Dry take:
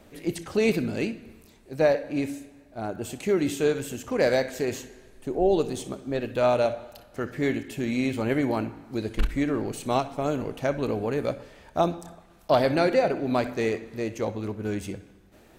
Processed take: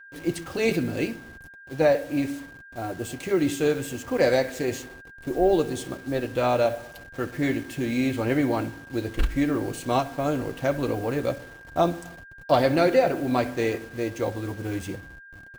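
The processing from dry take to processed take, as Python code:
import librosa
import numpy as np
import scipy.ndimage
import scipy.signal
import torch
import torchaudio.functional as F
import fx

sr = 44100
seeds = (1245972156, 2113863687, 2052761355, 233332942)

y = fx.delta_hold(x, sr, step_db=-42.5)
y = y + 10.0 ** (-47.0 / 20.0) * np.sin(2.0 * np.pi * 1600.0 * np.arange(len(y)) / sr)
y = fx.notch_comb(y, sr, f0_hz=210.0)
y = y * librosa.db_to_amplitude(2.5)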